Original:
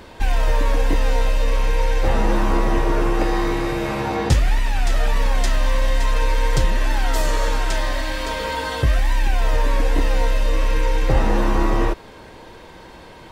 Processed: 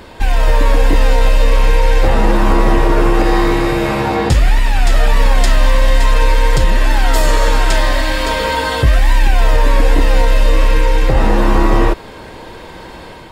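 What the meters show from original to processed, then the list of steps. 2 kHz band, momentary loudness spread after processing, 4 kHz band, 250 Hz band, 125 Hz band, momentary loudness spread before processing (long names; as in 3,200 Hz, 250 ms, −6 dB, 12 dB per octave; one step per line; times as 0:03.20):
+7.5 dB, 4 LU, +7.5 dB, +7.0 dB, +7.0 dB, 4 LU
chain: notch filter 6,000 Hz, Q 13
automatic gain control gain up to 4 dB
boost into a limiter +6 dB
level −1 dB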